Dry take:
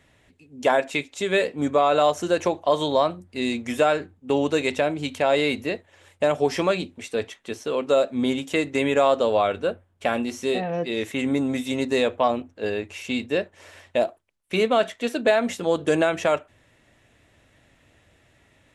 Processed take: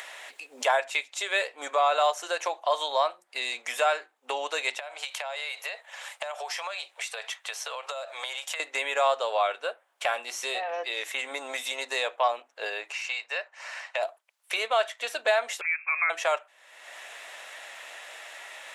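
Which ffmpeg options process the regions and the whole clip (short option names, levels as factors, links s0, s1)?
-filter_complex "[0:a]asettb=1/sr,asplit=3[s0][s1][s2];[s0]atrim=end=4.794[s3];[s1]atrim=start=4.79:end=8.6,asetpts=PTS-STARTPTS,afade=t=in:d=0.004:c=qsin,afade=t=out:st=3.806:d=0.004:c=qsin,highpass=f=540:w=0.5412,highpass=f=540:w=1.3066,acompressor=threshold=0.0224:ratio=12:attack=3.2:release=140:knee=1:detection=peak[s4];[s2]atrim=start=8.596[s5];[s3][s4]acrossfade=d=0.004:c1=hsin:c2=qsin[s6];[s6][s5]acrossfade=d=0.004:c1=qsin:c2=hsin,asettb=1/sr,asplit=3[s7][s8][s9];[s7]atrim=end=12.924[s10];[s8]atrim=start=12.92:end=14.03,asetpts=PTS-STARTPTS,afade=t=in:d=0.004:c=qsin,afade=t=out:st=1.106:d=0.004:c=qsin,highpass=710,lowpass=5900,equalizer=f=3400:w=6.5:g=-11[s11];[s9]atrim=start=14.026[s12];[s10][s11]acrossfade=d=0.004:c1=hsin:c2=qsin[s13];[s13][s12]acrossfade=d=0.004:c1=qsin:c2=hsin,asettb=1/sr,asplit=3[s14][s15][s16];[s14]atrim=end=15.614[s17];[s15]atrim=start=15.61:end=16.1,asetpts=PTS-STARTPTS,afade=t=in:d=0.004:c=qsin,afade=t=out:st=0.486:d=0.004:c=qsin,highpass=f=900:p=1,lowpass=f=2400:t=q:w=0.5098,lowpass=f=2400:t=q:w=0.6013,lowpass=f=2400:t=q:w=0.9,lowpass=f=2400:t=q:w=2.563,afreqshift=-2800[s18];[s16]atrim=start=16.096[s19];[s17][s18]acrossfade=d=0.004:c1=hsin:c2=qsin[s20];[s20][s19]acrossfade=d=0.004:c1=qsin:c2=hsin,highpass=f=670:w=0.5412,highpass=f=670:w=1.3066,acompressor=mode=upward:threshold=0.0562:ratio=2.5,volume=0.891"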